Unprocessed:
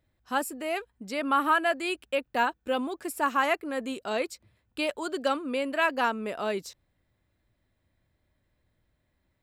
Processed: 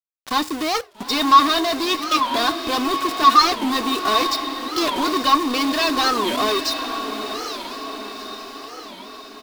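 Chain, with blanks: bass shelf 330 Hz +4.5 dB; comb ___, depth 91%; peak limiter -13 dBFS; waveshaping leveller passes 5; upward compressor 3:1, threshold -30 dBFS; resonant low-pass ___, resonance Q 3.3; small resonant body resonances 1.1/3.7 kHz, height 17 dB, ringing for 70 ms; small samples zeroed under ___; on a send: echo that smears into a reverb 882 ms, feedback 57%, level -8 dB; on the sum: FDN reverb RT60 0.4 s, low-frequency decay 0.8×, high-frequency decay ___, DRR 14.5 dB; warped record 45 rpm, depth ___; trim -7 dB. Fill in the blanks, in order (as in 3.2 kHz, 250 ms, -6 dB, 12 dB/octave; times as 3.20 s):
2.7 ms, 4.8 kHz, -19.5 dBFS, 0.85×, 250 cents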